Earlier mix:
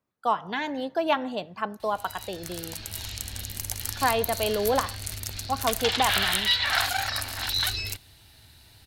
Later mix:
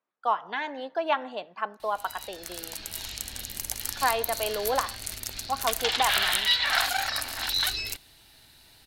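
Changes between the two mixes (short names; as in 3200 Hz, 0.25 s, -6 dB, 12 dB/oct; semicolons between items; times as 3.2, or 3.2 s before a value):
speech: add band-pass 1300 Hz, Q 0.5; master: add bell 90 Hz -12.5 dB 1.2 oct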